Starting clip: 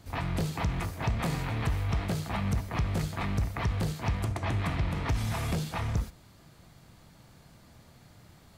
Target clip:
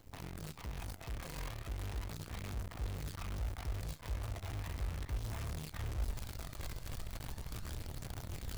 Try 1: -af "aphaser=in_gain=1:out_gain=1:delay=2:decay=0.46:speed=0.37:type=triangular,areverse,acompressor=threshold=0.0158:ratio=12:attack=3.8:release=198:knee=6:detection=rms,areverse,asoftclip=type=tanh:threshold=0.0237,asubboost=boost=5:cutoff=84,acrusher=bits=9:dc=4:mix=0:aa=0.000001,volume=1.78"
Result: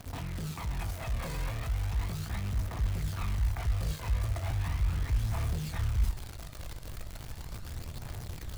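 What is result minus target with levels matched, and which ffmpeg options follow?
compression: peak gain reduction -11 dB
-af "aphaser=in_gain=1:out_gain=1:delay=2:decay=0.46:speed=0.37:type=triangular,areverse,acompressor=threshold=0.00398:ratio=12:attack=3.8:release=198:knee=6:detection=rms,areverse,asoftclip=type=tanh:threshold=0.0237,asubboost=boost=5:cutoff=84,acrusher=bits=9:dc=4:mix=0:aa=0.000001,volume=1.78"

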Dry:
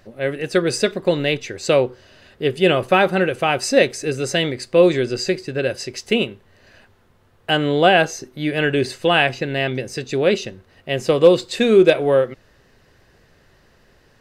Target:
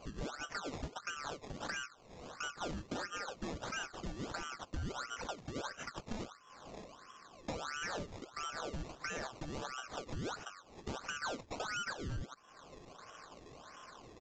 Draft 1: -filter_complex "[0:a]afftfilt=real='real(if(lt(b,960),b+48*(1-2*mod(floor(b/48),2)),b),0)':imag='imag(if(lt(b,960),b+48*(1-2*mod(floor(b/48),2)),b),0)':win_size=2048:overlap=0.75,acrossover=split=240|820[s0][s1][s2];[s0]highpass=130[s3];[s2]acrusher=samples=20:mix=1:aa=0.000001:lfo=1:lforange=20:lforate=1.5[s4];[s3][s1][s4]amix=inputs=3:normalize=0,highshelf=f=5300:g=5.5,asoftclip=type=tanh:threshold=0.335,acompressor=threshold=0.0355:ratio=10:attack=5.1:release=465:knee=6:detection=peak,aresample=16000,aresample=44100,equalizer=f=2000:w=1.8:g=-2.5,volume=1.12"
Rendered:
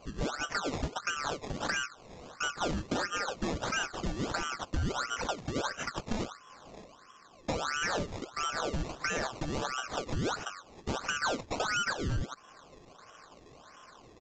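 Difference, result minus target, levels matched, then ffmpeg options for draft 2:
compression: peak gain reduction -8.5 dB
-filter_complex "[0:a]afftfilt=real='real(if(lt(b,960),b+48*(1-2*mod(floor(b/48),2)),b),0)':imag='imag(if(lt(b,960),b+48*(1-2*mod(floor(b/48),2)),b),0)':win_size=2048:overlap=0.75,acrossover=split=240|820[s0][s1][s2];[s0]highpass=130[s3];[s2]acrusher=samples=20:mix=1:aa=0.000001:lfo=1:lforange=20:lforate=1.5[s4];[s3][s1][s4]amix=inputs=3:normalize=0,highshelf=f=5300:g=5.5,asoftclip=type=tanh:threshold=0.335,acompressor=threshold=0.0119:ratio=10:attack=5.1:release=465:knee=6:detection=peak,aresample=16000,aresample=44100,equalizer=f=2000:w=1.8:g=-2.5,volume=1.12"

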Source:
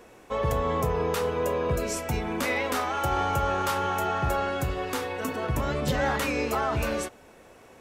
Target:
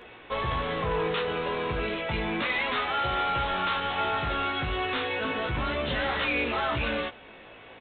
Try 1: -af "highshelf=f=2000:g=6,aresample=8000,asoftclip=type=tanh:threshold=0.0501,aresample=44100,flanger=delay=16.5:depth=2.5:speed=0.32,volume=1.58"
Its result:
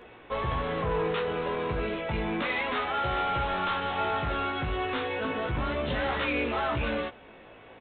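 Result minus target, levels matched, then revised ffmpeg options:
4 kHz band -3.5 dB
-af "highshelf=f=2000:g=15,aresample=8000,asoftclip=type=tanh:threshold=0.0501,aresample=44100,flanger=delay=16.5:depth=2.5:speed=0.32,volume=1.58"

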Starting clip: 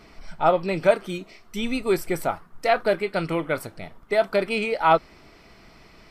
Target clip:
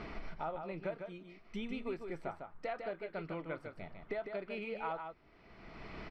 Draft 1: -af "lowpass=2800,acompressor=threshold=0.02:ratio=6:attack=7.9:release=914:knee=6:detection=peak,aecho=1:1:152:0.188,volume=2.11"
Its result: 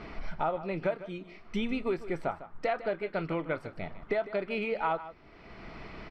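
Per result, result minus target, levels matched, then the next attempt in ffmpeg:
compression: peak gain reduction -9.5 dB; echo-to-direct -8 dB
-af "lowpass=2800,acompressor=threshold=0.00531:ratio=6:attack=7.9:release=914:knee=6:detection=peak,aecho=1:1:152:0.188,volume=2.11"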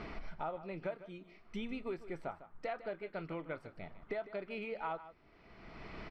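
echo-to-direct -8 dB
-af "lowpass=2800,acompressor=threshold=0.00531:ratio=6:attack=7.9:release=914:knee=6:detection=peak,aecho=1:1:152:0.473,volume=2.11"

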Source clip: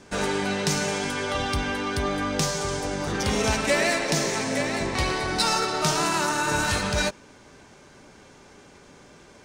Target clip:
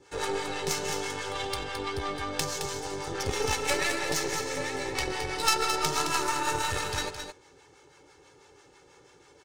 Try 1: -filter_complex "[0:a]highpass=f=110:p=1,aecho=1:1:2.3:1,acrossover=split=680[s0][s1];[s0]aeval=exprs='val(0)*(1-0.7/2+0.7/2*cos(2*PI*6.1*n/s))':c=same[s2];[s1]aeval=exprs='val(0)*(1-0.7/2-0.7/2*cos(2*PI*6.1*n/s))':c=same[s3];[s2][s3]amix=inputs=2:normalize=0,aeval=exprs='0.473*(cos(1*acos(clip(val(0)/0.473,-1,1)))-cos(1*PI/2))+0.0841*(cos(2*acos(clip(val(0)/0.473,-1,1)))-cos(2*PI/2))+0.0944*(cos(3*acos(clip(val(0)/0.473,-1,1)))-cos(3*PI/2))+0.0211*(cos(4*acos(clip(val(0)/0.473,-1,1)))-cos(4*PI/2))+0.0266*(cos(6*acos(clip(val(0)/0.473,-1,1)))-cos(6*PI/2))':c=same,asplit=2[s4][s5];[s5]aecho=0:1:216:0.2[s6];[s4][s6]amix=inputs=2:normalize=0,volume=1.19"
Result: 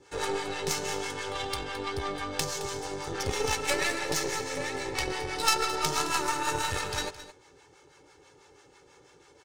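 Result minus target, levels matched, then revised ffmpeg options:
echo-to-direct -7 dB
-filter_complex "[0:a]highpass=f=110:p=1,aecho=1:1:2.3:1,acrossover=split=680[s0][s1];[s0]aeval=exprs='val(0)*(1-0.7/2+0.7/2*cos(2*PI*6.1*n/s))':c=same[s2];[s1]aeval=exprs='val(0)*(1-0.7/2-0.7/2*cos(2*PI*6.1*n/s))':c=same[s3];[s2][s3]amix=inputs=2:normalize=0,aeval=exprs='0.473*(cos(1*acos(clip(val(0)/0.473,-1,1)))-cos(1*PI/2))+0.0841*(cos(2*acos(clip(val(0)/0.473,-1,1)))-cos(2*PI/2))+0.0944*(cos(3*acos(clip(val(0)/0.473,-1,1)))-cos(3*PI/2))+0.0211*(cos(4*acos(clip(val(0)/0.473,-1,1)))-cos(4*PI/2))+0.0266*(cos(6*acos(clip(val(0)/0.473,-1,1)))-cos(6*PI/2))':c=same,asplit=2[s4][s5];[s5]aecho=0:1:216:0.447[s6];[s4][s6]amix=inputs=2:normalize=0,volume=1.19"

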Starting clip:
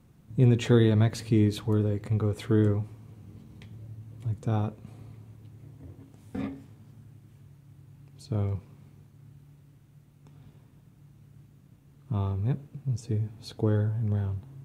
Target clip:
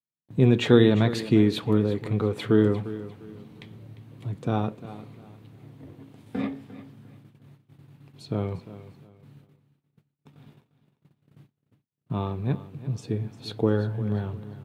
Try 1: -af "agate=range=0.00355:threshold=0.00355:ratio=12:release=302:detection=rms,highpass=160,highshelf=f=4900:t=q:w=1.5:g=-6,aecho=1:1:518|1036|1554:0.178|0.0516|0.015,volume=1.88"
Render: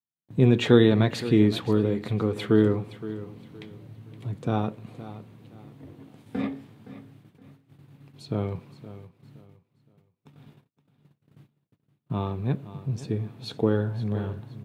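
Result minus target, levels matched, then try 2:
echo 168 ms late
-af "agate=range=0.00355:threshold=0.00355:ratio=12:release=302:detection=rms,highpass=160,highshelf=f=4900:t=q:w=1.5:g=-6,aecho=1:1:350|700|1050:0.178|0.0516|0.015,volume=1.88"

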